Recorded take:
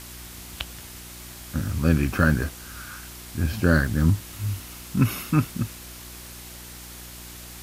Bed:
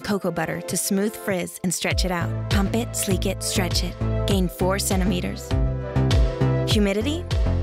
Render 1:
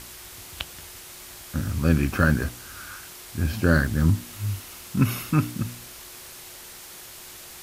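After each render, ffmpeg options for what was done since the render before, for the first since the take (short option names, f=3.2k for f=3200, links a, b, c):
-af "bandreject=f=60:t=h:w=4,bandreject=f=120:t=h:w=4,bandreject=f=180:t=h:w=4,bandreject=f=240:t=h:w=4,bandreject=f=300:t=h:w=4"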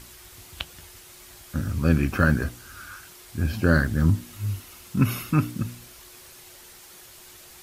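-af "afftdn=nr=6:nf=-43"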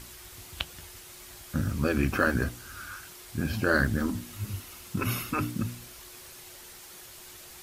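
-af "afftfilt=real='re*lt(hypot(re,im),0.562)':imag='im*lt(hypot(re,im),0.562)':win_size=1024:overlap=0.75"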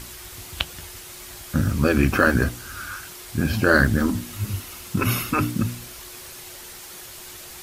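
-af "volume=7.5dB,alimiter=limit=-3dB:level=0:latency=1"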